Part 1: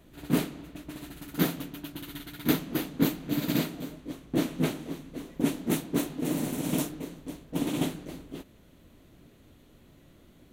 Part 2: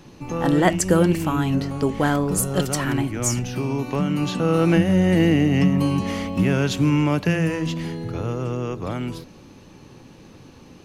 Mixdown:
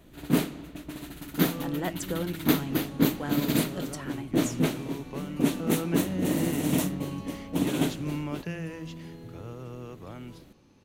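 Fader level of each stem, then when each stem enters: +2.0 dB, -14.5 dB; 0.00 s, 1.20 s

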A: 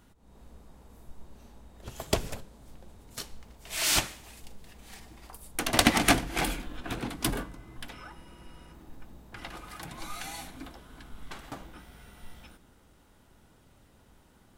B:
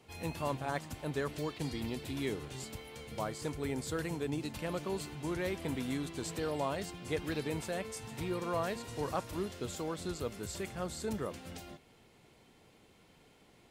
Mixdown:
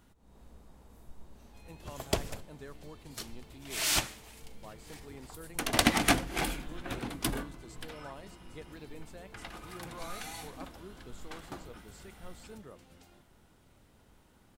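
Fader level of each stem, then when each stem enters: -3.0 dB, -12.5 dB; 0.00 s, 1.45 s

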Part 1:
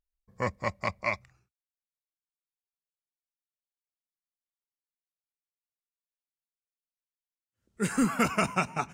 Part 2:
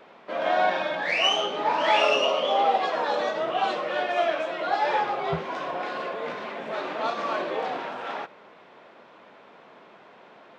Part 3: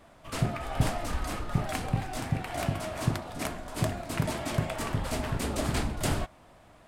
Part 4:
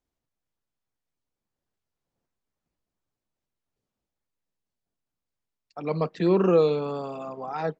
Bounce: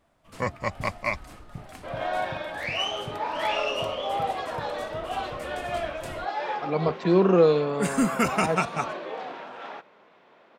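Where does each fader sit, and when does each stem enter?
+2.0 dB, -6.0 dB, -12.0 dB, +1.5 dB; 0.00 s, 1.55 s, 0.00 s, 0.85 s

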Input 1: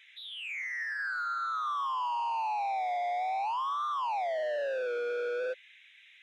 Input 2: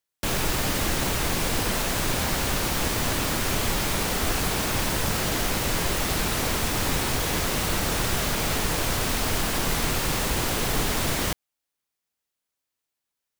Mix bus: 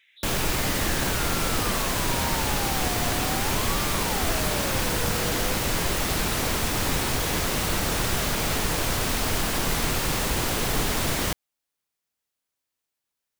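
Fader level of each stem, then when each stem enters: -4.5 dB, 0.0 dB; 0.00 s, 0.00 s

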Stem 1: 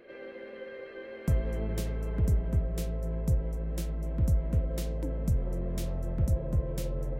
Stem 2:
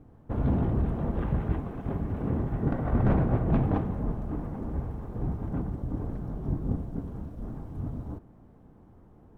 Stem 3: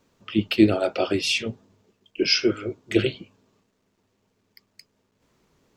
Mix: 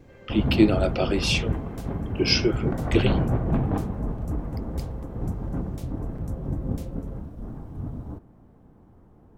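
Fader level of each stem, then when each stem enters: -6.5 dB, +1.0 dB, -1.5 dB; 0.00 s, 0.00 s, 0.00 s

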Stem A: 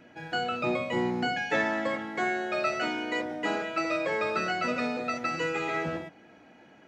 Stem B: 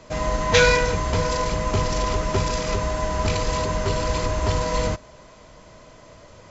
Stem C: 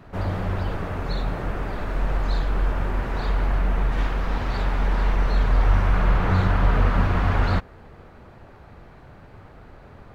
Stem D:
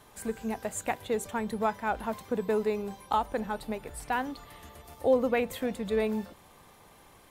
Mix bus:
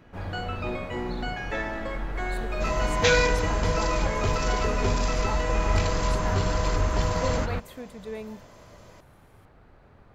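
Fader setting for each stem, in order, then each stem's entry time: -4.5 dB, -4.5 dB, -9.0 dB, -8.5 dB; 0.00 s, 2.50 s, 0.00 s, 2.15 s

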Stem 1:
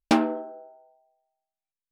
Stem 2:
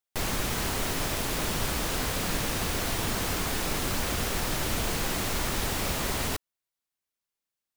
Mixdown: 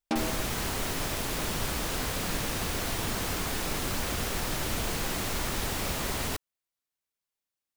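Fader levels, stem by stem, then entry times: -9.5 dB, -2.0 dB; 0.00 s, 0.00 s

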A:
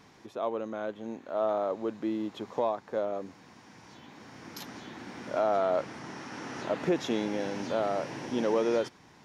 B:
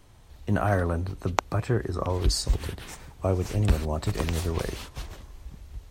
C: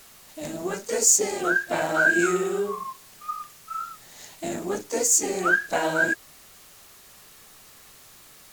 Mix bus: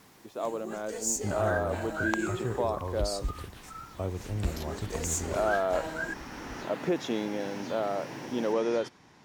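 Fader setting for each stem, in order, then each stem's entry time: -1.0 dB, -8.5 dB, -12.5 dB; 0.00 s, 0.75 s, 0.00 s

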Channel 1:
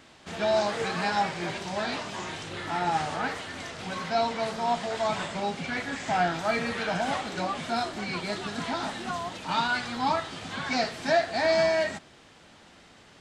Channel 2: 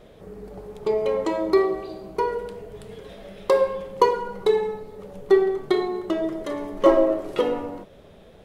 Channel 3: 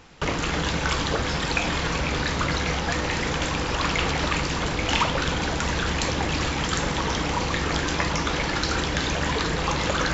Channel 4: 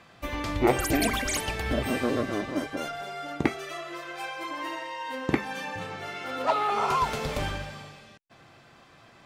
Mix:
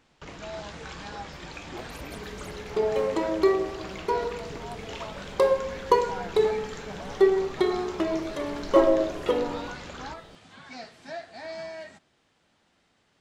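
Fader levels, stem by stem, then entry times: -14.5 dB, -2.5 dB, -17.5 dB, -19.0 dB; 0.00 s, 1.90 s, 0.00 s, 1.10 s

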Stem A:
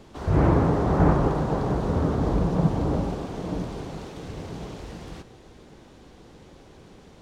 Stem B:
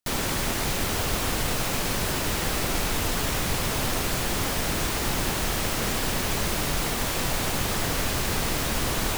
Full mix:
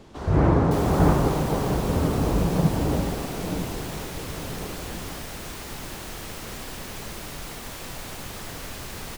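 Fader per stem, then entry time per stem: +0.5 dB, -10.0 dB; 0.00 s, 0.65 s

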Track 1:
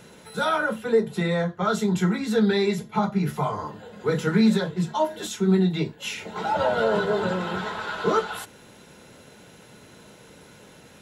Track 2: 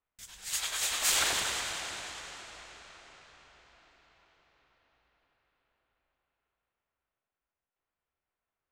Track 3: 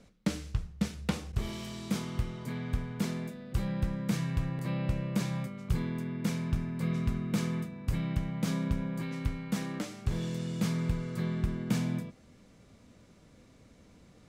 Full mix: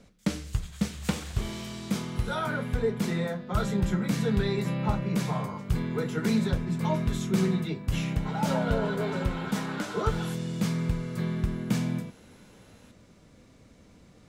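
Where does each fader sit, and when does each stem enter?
-8.0 dB, -17.0 dB, +2.5 dB; 1.90 s, 0.00 s, 0.00 s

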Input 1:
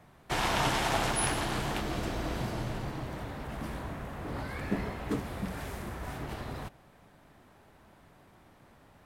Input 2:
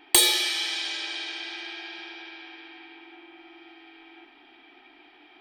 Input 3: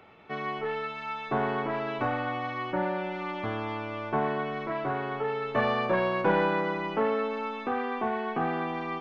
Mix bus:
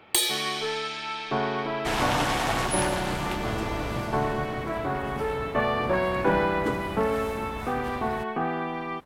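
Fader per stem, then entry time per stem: +2.0 dB, -5.5 dB, +1.0 dB; 1.55 s, 0.00 s, 0.00 s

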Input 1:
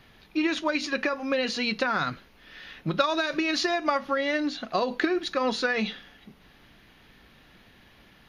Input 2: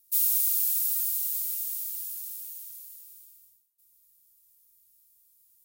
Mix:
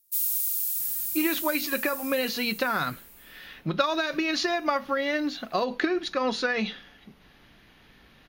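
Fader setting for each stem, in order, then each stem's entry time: -0.5 dB, -2.5 dB; 0.80 s, 0.00 s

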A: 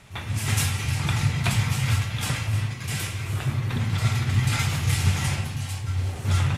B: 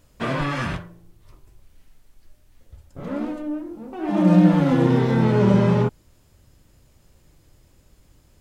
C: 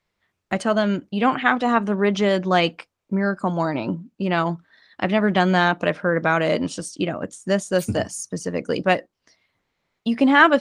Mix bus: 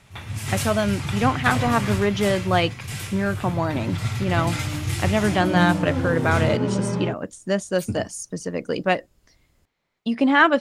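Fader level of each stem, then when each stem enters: -3.0 dB, -7.5 dB, -2.0 dB; 0.00 s, 1.25 s, 0.00 s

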